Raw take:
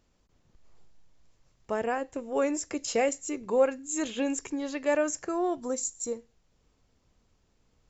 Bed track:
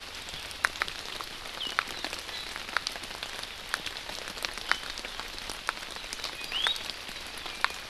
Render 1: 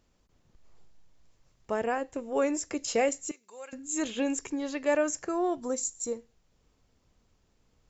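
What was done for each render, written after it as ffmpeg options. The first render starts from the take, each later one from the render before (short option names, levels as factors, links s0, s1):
-filter_complex "[0:a]asettb=1/sr,asplit=3[s0][s1][s2];[s0]atrim=end=3.314[s3];[s1]atrim=start=3.31:end=3.73,asetpts=PTS-STARTPTS,afade=t=in:d=0.004:c=qsin,afade=t=out:st=0.416:d=0.004:c=qsin,aderivative[s4];[s2]atrim=start=3.726[s5];[s3][s4]acrossfade=d=0.004:c1=hsin:c2=qsin[s6];[s6][s5]acrossfade=d=0.004:c1=qsin:c2=hsin"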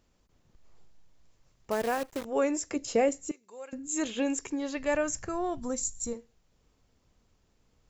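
-filter_complex "[0:a]asettb=1/sr,asplit=3[s0][s1][s2];[s0]atrim=end=1.714[s3];[s1]atrim=start=1.71:end=2.25,asetpts=PTS-STARTPTS,afade=t=in:d=0.004:c=qsin,afade=t=out:st=0.536:d=0.004:c=qsin,acrusher=bits=7:dc=4:mix=0:aa=0.000001[s4];[s2]atrim=start=2.246[s5];[s3][s4]acrossfade=d=0.004:c1=hsin:c2=qsin[s6];[s6][s5]acrossfade=d=0.004:c1=qsin:c2=hsin,asettb=1/sr,asplit=3[s7][s8][s9];[s7]atrim=end=2.764[s10];[s8]atrim=start=2.76:end=3.88,asetpts=PTS-STARTPTS,afade=t=in:d=0.004:c=qsin,afade=t=out:st=1.116:d=0.004:c=qsin,tiltshelf=f=710:g=4.5[s11];[s9]atrim=start=3.876[s12];[s10][s11]acrossfade=d=0.004:c1=hsin:c2=qsin[s13];[s13][s12]acrossfade=d=0.004:c1=qsin:c2=hsin,asplit=3[s14][s15][s16];[s14]afade=t=out:st=4.76:d=0.02[s17];[s15]asubboost=boost=9.5:cutoff=120,afade=t=in:st=4.76:d=0.02,afade=t=out:st=6.13:d=0.02[s18];[s16]afade=t=in:st=6.13:d=0.02[s19];[s17][s18][s19]amix=inputs=3:normalize=0"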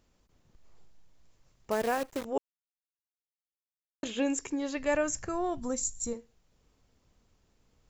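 -filter_complex "[0:a]asplit=3[s0][s1][s2];[s0]atrim=end=2.38,asetpts=PTS-STARTPTS,afade=t=out:st=2.376:d=0.004:c=hsin[s3];[s1]atrim=start=2.38:end=4.03,asetpts=PTS-STARTPTS,volume=0[s4];[s2]atrim=start=4.03,asetpts=PTS-STARTPTS,afade=t=in:d=0.004:c=hsin[s5];[s3][s4][s5]concat=n=3:v=0:a=1"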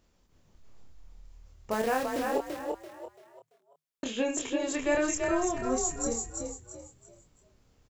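-filter_complex "[0:a]asplit=2[s0][s1];[s1]adelay=27,volume=0.631[s2];[s0][s2]amix=inputs=2:normalize=0,asplit=5[s3][s4][s5][s6][s7];[s4]adelay=338,afreqshift=38,volume=0.631[s8];[s5]adelay=676,afreqshift=76,volume=0.209[s9];[s6]adelay=1014,afreqshift=114,volume=0.0684[s10];[s7]adelay=1352,afreqshift=152,volume=0.0226[s11];[s3][s8][s9][s10][s11]amix=inputs=5:normalize=0"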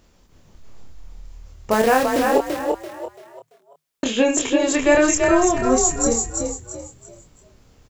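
-af "volume=3.98,alimiter=limit=0.708:level=0:latency=1"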